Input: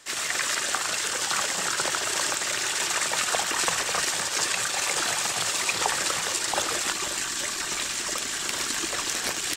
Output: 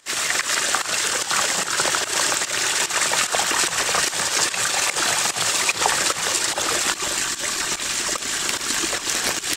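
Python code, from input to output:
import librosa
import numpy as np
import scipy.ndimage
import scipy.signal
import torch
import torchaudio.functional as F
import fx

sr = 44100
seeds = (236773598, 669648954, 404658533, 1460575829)

y = fx.volume_shaper(x, sr, bpm=147, per_beat=1, depth_db=-14, release_ms=164.0, shape='fast start')
y = y * 10.0 ** (6.0 / 20.0)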